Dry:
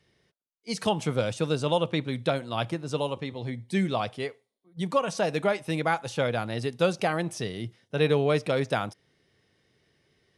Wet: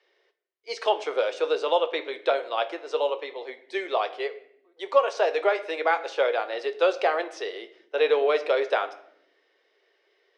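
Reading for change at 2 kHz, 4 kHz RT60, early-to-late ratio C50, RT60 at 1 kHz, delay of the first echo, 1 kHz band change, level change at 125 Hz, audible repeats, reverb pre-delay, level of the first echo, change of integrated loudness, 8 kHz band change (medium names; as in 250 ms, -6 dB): +3.0 dB, 0.55 s, 15.0 dB, 0.65 s, no echo, +3.5 dB, under -40 dB, no echo, 7 ms, no echo, +2.5 dB, no reading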